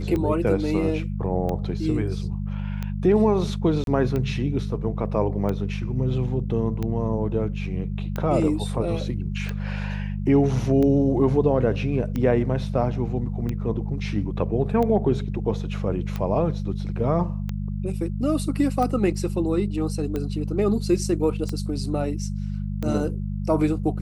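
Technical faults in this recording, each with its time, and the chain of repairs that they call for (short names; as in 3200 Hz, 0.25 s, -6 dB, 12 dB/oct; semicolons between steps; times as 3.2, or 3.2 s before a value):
hum 50 Hz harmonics 4 -28 dBFS
tick 45 rpm -16 dBFS
3.84–3.87 gap 32 ms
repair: de-click; de-hum 50 Hz, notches 4; interpolate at 3.84, 32 ms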